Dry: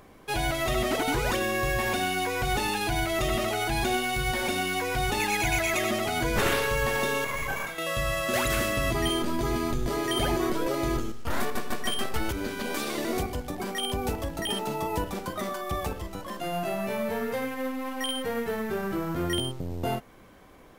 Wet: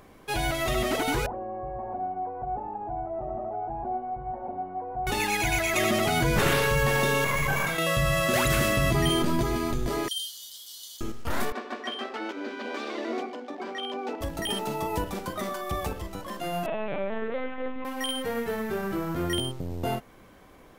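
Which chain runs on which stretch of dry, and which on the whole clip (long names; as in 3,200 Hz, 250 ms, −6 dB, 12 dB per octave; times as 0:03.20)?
0:01.26–0:05.07: linear delta modulator 32 kbit/s, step −30.5 dBFS + transistor ladder low-pass 850 Hz, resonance 65%
0:05.76–0:09.43: parametric band 150 Hz +12.5 dB 0.34 octaves + envelope flattener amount 50%
0:10.08–0:11.01: linear-phase brick-wall high-pass 2,900 Hz + bit-depth reduction 10 bits, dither triangular
0:11.52–0:14.21: elliptic high-pass filter 240 Hz, stop band 50 dB + high-frequency loss of the air 170 metres + mains-hum notches 50/100/150/200/250/300/350/400/450/500 Hz
0:16.66–0:17.85: high-frequency loss of the air 57 metres + linear-prediction vocoder at 8 kHz pitch kept
whole clip: no processing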